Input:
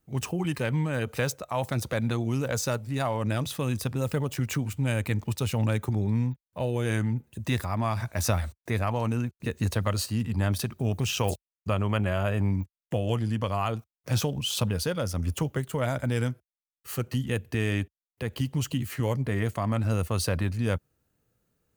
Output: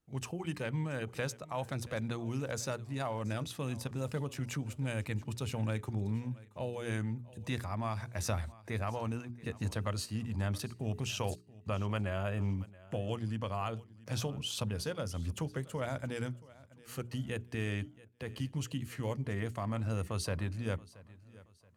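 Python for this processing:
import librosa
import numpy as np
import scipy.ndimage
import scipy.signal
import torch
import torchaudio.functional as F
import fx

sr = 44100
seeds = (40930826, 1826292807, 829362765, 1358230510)

p1 = scipy.signal.sosfilt(scipy.signal.butter(2, 11000.0, 'lowpass', fs=sr, output='sos'), x)
p2 = fx.hum_notches(p1, sr, base_hz=60, count=7)
p3 = p2 + fx.echo_feedback(p2, sr, ms=677, feedback_pct=34, wet_db=-20.5, dry=0)
y = F.gain(torch.from_numpy(p3), -8.0).numpy()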